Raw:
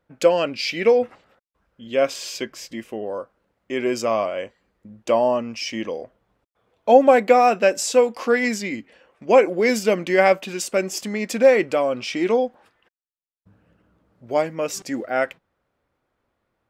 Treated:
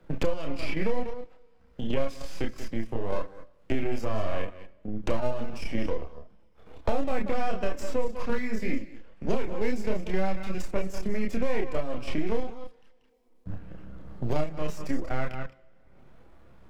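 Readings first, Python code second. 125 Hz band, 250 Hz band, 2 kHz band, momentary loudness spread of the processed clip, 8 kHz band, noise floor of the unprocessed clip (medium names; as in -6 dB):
+3.5 dB, -6.0 dB, -12.5 dB, 13 LU, -18.0 dB, -75 dBFS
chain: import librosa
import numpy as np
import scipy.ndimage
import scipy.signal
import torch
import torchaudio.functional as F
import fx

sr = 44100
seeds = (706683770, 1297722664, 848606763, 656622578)

p1 = np.where(x < 0.0, 10.0 ** (-12.0 / 20.0) * x, x)
p2 = p1 + fx.echo_single(p1, sr, ms=185, db=-14.5, dry=0)
p3 = fx.level_steps(p2, sr, step_db=10)
p4 = fx.high_shelf(p3, sr, hz=7700.0, db=-4.5)
p5 = fx.leveller(p4, sr, passes=1)
p6 = fx.low_shelf(p5, sr, hz=270.0, db=10.5)
p7 = fx.rev_double_slope(p6, sr, seeds[0], early_s=0.64, late_s=1.8, knee_db=-26, drr_db=18.5)
p8 = fx.chorus_voices(p7, sr, voices=6, hz=0.25, base_ms=29, depth_ms=3.5, mix_pct=45)
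p9 = fx.band_squash(p8, sr, depth_pct=100)
y = p9 * librosa.db_to_amplitude(-7.5)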